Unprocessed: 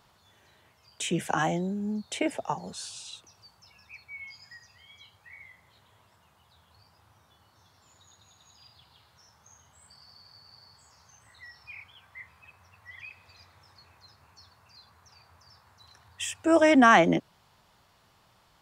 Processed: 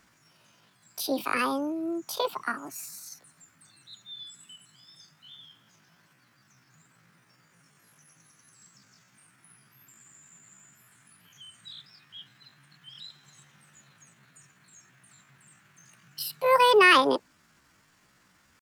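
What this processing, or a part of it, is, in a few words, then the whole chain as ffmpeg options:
chipmunk voice: -af "asetrate=70004,aresample=44100,atempo=0.629961"

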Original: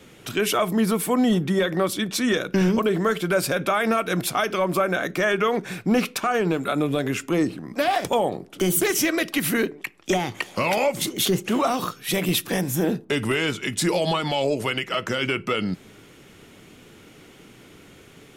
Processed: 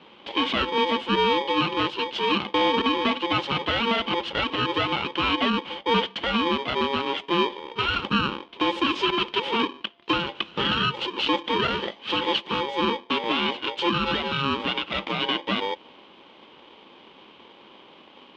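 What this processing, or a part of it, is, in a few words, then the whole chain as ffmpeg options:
ring modulator pedal into a guitar cabinet: -af "aeval=exprs='val(0)*sgn(sin(2*PI*690*n/s))':c=same,highpass=80,equalizer=f=110:t=q:w=4:g=-10,equalizer=f=210:t=q:w=4:g=6,equalizer=f=340:t=q:w=4:g=4,equalizer=f=1800:t=q:w=4:g=-6,equalizer=f=3100:t=q:w=4:g=10,lowpass=f=3600:w=0.5412,lowpass=f=3600:w=1.3066,volume=0.75"

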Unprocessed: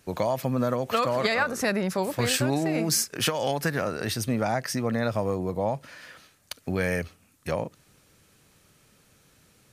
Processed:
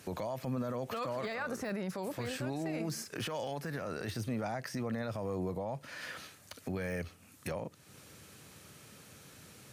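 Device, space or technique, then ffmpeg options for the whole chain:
podcast mastering chain: -af "highpass=f=71:w=0.5412,highpass=f=71:w=1.3066,deesser=0.85,acompressor=threshold=0.00501:ratio=2,alimiter=level_in=3.16:limit=0.0631:level=0:latency=1:release=17,volume=0.316,volume=2" -ar 44100 -c:a libmp3lame -b:a 128k

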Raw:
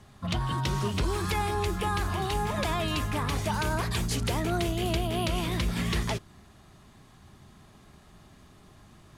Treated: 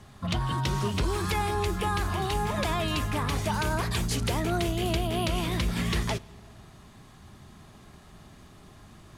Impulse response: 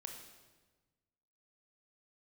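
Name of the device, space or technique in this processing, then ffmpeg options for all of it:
compressed reverb return: -filter_complex "[0:a]asplit=2[s0][s1];[1:a]atrim=start_sample=2205[s2];[s1][s2]afir=irnorm=-1:irlink=0,acompressor=threshold=0.00631:ratio=6,volume=0.794[s3];[s0][s3]amix=inputs=2:normalize=0"

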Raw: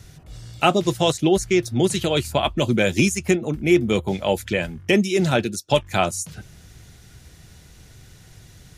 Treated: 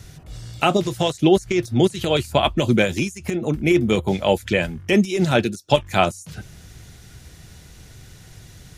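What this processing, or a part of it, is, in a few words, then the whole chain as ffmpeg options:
de-esser from a sidechain: -filter_complex "[0:a]asplit=2[s0][s1];[s1]highpass=f=6400:w=0.5412,highpass=f=6400:w=1.3066,apad=whole_len=386779[s2];[s0][s2]sidechaincompress=threshold=0.0126:ratio=16:attack=1:release=65,volume=1.41"

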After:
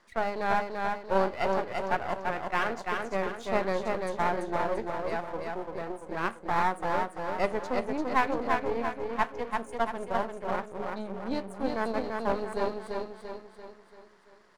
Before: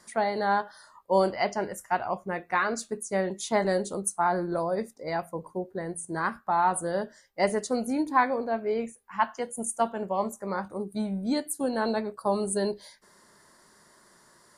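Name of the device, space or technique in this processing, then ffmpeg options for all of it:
crystal radio: -af "highpass=280,lowpass=3200,aecho=1:1:340|680|1020|1360|1700|2040:0.668|0.327|0.16|0.0786|0.0385|0.0189,aeval=exprs='if(lt(val(0),0),0.251*val(0),val(0))':c=same"

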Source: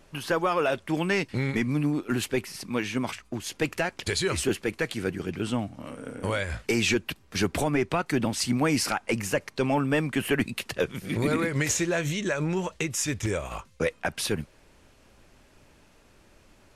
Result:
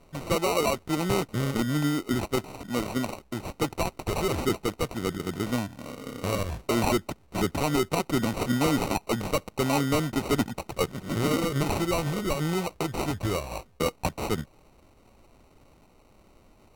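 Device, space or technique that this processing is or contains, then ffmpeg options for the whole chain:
crushed at another speed: -af "asetrate=55125,aresample=44100,acrusher=samples=21:mix=1:aa=0.000001,asetrate=35280,aresample=44100"

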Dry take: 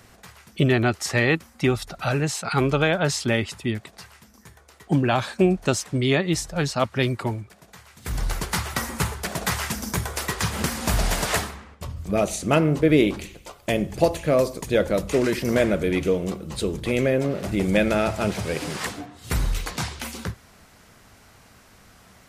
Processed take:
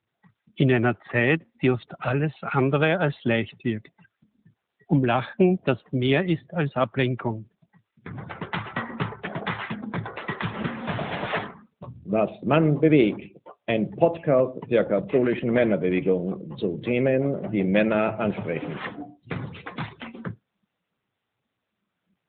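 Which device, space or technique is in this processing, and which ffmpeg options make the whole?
mobile call with aggressive noise cancelling: -af "highpass=f=110:w=0.5412,highpass=f=110:w=1.3066,afftdn=nr=35:nf=-37" -ar 8000 -c:a libopencore_amrnb -b:a 10200

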